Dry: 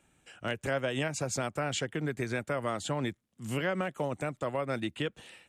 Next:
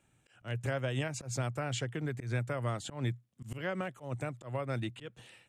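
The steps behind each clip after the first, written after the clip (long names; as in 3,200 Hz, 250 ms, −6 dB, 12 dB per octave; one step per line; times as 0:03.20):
parametric band 120 Hz +14.5 dB 0.29 octaves
volume swells 132 ms
level −4.5 dB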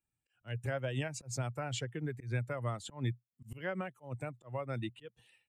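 spectral dynamics exaggerated over time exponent 1.5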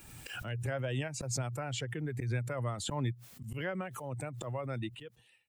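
background raised ahead of every attack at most 37 dB per second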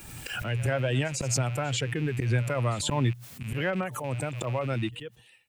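loose part that buzzes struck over −44 dBFS, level −41 dBFS
echo ahead of the sound 90 ms −19 dB
level +8 dB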